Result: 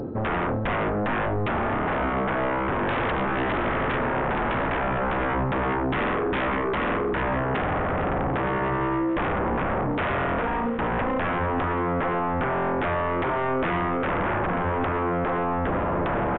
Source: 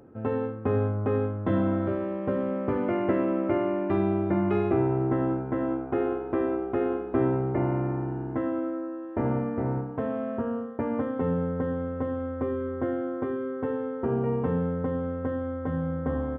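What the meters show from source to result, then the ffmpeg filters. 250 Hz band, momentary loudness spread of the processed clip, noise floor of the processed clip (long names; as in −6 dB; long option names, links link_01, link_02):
−1.0 dB, 1 LU, −26 dBFS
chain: -af "equalizer=frequency=2200:width_type=o:width=1.7:gain=-12.5,areverse,acompressor=mode=upward:threshold=-28dB:ratio=2.5,areverse,alimiter=limit=-22dB:level=0:latency=1:release=482,aeval=exprs='0.0794*sin(PI/2*4.47*val(0)/0.0794)':channel_layout=same,aecho=1:1:452:0.224,aresample=8000,aresample=44100" -ar 16000 -c:a mp2 -b:a 64k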